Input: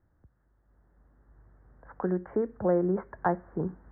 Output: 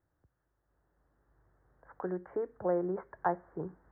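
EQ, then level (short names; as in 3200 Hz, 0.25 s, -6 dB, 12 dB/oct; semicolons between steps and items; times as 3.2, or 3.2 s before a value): low shelf 95 Hz -11 dB; dynamic EQ 840 Hz, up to +3 dB, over -37 dBFS, Q 1.5; bell 220 Hz -12 dB 0.3 oct; -5.0 dB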